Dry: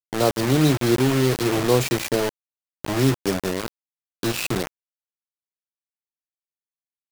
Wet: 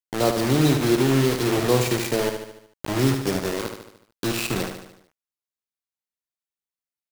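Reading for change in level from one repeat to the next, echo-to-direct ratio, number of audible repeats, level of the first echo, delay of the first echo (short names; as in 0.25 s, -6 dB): -5.5 dB, -5.5 dB, 6, -7.0 dB, 74 ms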